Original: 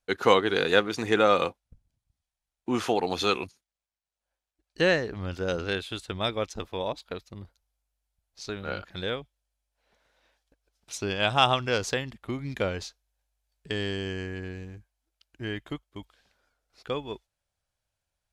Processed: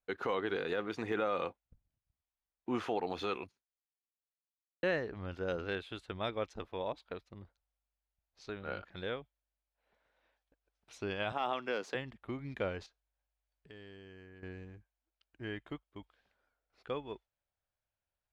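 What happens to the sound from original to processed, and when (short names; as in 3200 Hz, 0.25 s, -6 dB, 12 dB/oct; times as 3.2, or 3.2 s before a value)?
3.21–4.83 fade out quadratic
11.32–11.95 HPF 200 Hz 24 dB/oct
12.86–14.43 compressor 2:1, threshold -53 dBFS
whole clip: de-esser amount 70%; limiter -16 dBFS; tone controls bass -3 dB, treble -14 dB; gain -6.5 dB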